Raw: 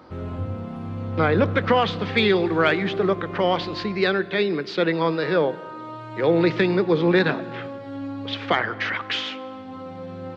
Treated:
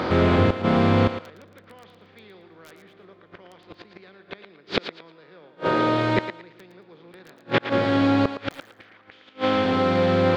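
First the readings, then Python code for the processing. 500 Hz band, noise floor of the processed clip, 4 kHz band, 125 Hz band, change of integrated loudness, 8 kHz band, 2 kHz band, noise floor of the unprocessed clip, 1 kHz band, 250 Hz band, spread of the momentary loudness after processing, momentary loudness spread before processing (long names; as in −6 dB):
−3.0 dB, −54 dBFS, −4.5 dB, +1.0 dB, +0.5 dB, can't be measured, −5.0 dB, −37 dBFS, −0.5 dB, 0.0 dB, 11 LU, 15 LU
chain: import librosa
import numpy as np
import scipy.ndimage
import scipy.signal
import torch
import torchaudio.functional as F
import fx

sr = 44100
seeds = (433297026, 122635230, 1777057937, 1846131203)

p1 = fx.bin_compress(x, sr, power=0.6)
p2 = (np.mod(10.0 ** (6.0 / 20.0) * p1 + 1.0, 2.0) - 1.0) / 10.0 ** (6.0 / 20.0)
p3 = fx.gate_flip(p2, sr, shuts_db=-13.0, range_db=-38)
p4 = p3 + fx.echo_thinned(p3, sr, ms=113, feedback_pct=25, hz=420.0, wet_db=-8.5, dry=0)
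y = F.gain(torch.from_numpy(p4), 6.0).numpy()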